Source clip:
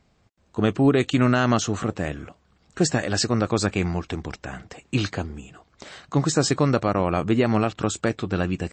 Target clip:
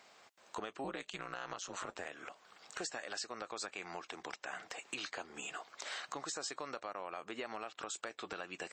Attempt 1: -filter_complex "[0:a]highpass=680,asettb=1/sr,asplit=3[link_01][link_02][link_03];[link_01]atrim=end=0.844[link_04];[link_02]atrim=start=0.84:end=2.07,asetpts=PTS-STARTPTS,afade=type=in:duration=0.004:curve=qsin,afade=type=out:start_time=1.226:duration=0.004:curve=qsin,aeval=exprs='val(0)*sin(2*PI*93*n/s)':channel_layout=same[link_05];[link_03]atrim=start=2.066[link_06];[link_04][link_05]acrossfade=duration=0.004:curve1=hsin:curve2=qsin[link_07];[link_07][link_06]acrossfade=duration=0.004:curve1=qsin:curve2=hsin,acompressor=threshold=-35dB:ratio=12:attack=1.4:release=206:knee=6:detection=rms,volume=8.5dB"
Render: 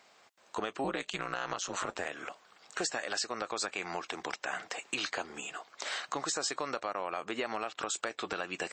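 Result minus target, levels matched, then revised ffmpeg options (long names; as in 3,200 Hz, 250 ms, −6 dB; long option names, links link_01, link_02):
downward compressor: peak gain reduction −8 dB
-filter_complex "[0:a]highpass=680,asettb=1/sr,asplit=3[link_01][link_02][link_03];[link_01]atrim=end=0.844[link_04];[link_02]atrim=start=0.84:end=2.07,asetpts=PTS-STARTPTS,afade=type=in:duration=0.004:curve=qsin,afade=type=out:start_time=1.226:duration=0.004:curve=qsin,aeval=exprs='val(0)*sin(2*PI*93*n/s)':channel_layout=same[link_05];[link_03]atrim=start=2.066[link_06];[link_04][link_05]acrossfade=duration=0.004:curve1=hsin:curve2=qsin[link_07];[link_07][link_06]acrossfade=duration=0.004:curve1=qsin:curve2=hsin,acompressor=threshold=-43.5dB:ratio=12:attack=1.4:release=206:knee=6:detection=rms,volume=8.5dB"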